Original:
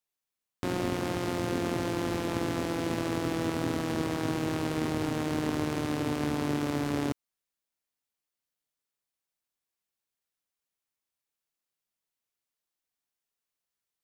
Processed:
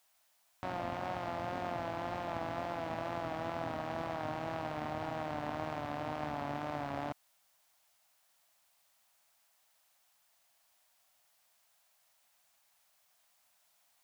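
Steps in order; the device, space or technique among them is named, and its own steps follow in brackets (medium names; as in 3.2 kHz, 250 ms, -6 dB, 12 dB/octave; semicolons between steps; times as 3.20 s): cassette deck with a dirty head (tape spacing loss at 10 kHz 24 dB; wow and flutter; white noise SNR 35 dB); resonant low shelf 530 Hz -7.5 dB, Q 3; trim -2.5 dB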